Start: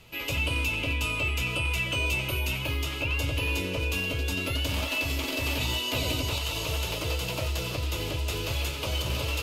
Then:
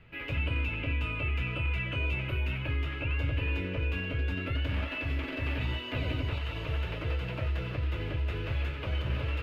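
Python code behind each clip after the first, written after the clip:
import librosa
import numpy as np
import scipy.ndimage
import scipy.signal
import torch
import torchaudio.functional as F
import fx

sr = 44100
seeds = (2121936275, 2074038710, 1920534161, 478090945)

y = fx.curve_eq(x, sr, hz=(130.0, 1000.0, 1700.0, 6800.0), db=(0, -8, 3, -30))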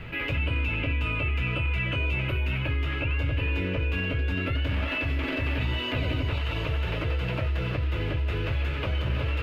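y = fx.env_flatten(x, sr, amount_pct=50)
y = F.gain(torch.from_numpy(y), 2.5).numpy()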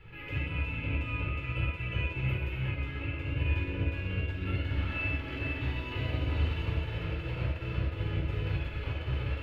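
y = fx.comb_fb(x, sr, f0_hz=850.0, decay_s=0.39, harmonics='all', damping=0.0, mix_pct=70)
y = fx.room_shoebox(y, sr, seeds[0], volume_m3=2000.0, walls='mixed', distance_m=4.2)
y = fx.upward_expand(y, sr, threshold_db=-35.0, expansion=1.5)
y = F.gain(torch.from_numpy(y), -1.5).numpy()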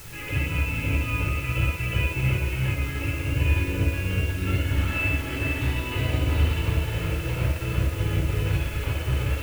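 y = fx.dmg_noise_colour(x, sr, seeds[1], colour='white', level_db=-53.0)
y = F.gain(torch.from_numpy(y), 7.5).numpy()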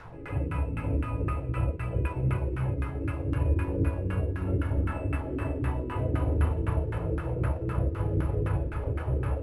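y = (np.kron(x[::4], np.eye(4)[0]) * 4)[:len(x)]
y = fx.filter_lfo_lowpass(y, sr, shape='saw_down', hz=3.9, low_hz=320.0, high_hz=1500.0, q=2.4)
y = fx.high_shelf(y, sr, hz=5100.0, db=4.5)
y = F.gain(torch.from_numpy(y), -4.0).numpy()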